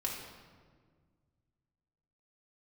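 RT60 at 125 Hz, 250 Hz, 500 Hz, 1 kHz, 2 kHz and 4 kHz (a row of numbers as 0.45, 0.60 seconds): 2.8, 2.3, 1.9, 1.5, 1.3, 1.0 seconds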